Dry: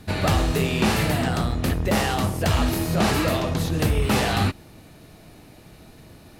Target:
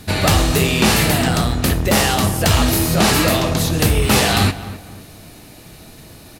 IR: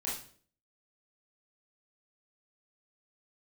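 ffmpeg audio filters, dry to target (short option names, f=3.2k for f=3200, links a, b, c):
-filter_complex "[0:a]highshelf=f=3.3k:g=8.5,asplit=2[a][b];[b]adelay=258,lowpass=f=2k:p=1,volume=-14.5dB,asplit=2[c][d];[d]adelay=258,lowpass=f=2k:p=1,volume=0.34,asplit=2[e][f];[f]adelay=258,lowpass=f=2k:p=1,volume=0.34[g];[a][c][e][g]amix=inputs=4:normalize=0,asplit=2[h][i];[1:a]atrim=start_sample=2205[j];[i][j]afir=irnorm=-1:irlink=0,volume=-17.5dB[k];[h][k]amix=inputs=2:normalize=0,volume=4.5dB"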